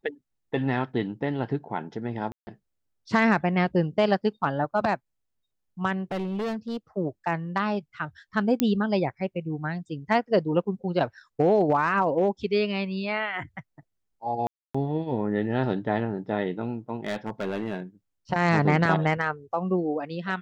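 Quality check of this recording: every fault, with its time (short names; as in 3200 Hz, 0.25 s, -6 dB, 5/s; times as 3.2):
2.32–2.47 gap 0.15 s
6.11–6.77 clipped -26 dBFS
8.6 pop -7 dBFS
14.47–14.74 gap 0.275 s
17.05–17.8 clipped -24.5 dBFS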